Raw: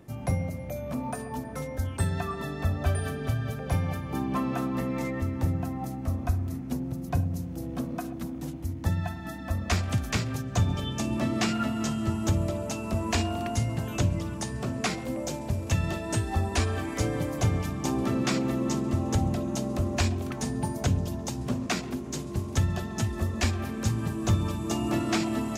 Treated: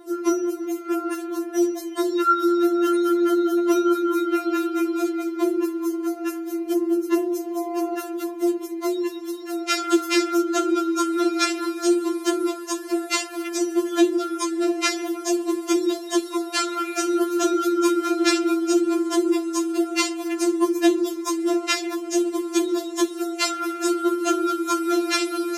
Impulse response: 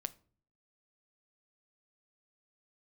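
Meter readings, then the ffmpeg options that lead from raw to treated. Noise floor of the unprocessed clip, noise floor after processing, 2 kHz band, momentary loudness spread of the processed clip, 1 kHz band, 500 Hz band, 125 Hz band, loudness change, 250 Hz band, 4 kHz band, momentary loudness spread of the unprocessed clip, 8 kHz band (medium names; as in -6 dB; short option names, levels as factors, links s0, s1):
-37 dBFS, -34 dBFS, +6.0 dB, 7 LU, +8.0 dB, +11.5 dB, under -35 dB, +7.0 dB, +9.0 dB, +8.0 dB, 6 LU, +7.0 dB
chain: -filter_complex "[0:a]acontrast=25,afreqshift=200,asplit=2[s0][s1];[1:a]atrim=start_sample=2205[s2];[s1][s2]afir=irnorm=-1:irlink=0,volume=1.06[s3];[s0][s3]amix=inputs=2:normalize=0,afftfilt=real='re*4*eq(mod(b,16),0)':imag='im*4*eq(mod(b,16),0)':win_size=2048:overlap=0.75"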